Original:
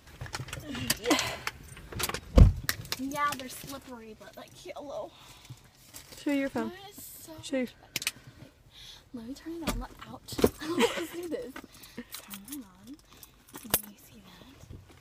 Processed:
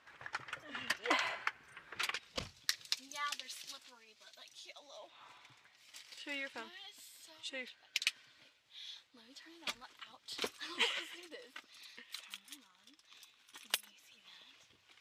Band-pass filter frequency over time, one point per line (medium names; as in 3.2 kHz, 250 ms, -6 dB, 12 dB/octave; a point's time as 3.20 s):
band-pass filter, Q 1.2
1.80 s 1.5 kHz
2.41 s 4.1 kHz
4.96 s 4.1 kHz
5.24 s 1.2 kHz
5.98 s 3.1 kHz